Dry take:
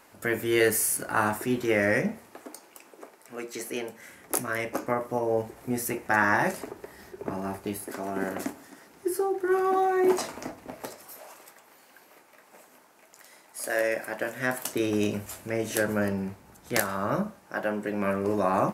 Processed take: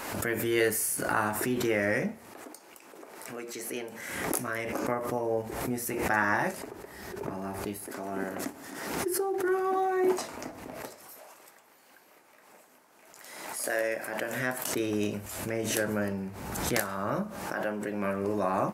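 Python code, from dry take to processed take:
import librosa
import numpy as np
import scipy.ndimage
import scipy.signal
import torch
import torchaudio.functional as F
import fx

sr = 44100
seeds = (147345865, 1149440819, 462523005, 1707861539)

y = fx.pre_swell(x, sr, db_per_s=39.0)
y = y * librosa.db_to_amplitude(-4.0)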